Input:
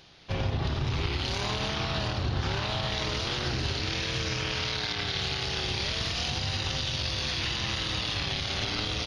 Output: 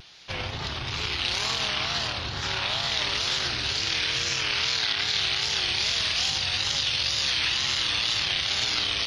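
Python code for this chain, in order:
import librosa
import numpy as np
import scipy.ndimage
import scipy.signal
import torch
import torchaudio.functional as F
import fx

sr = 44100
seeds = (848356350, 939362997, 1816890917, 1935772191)

y = fx.tilt_shelf(x, sr, db=-7.5, hz=830.0)
y = fx.wow_flutter(y, sr, seeds[0], rate_hz=2.1, depth_cents=120.0)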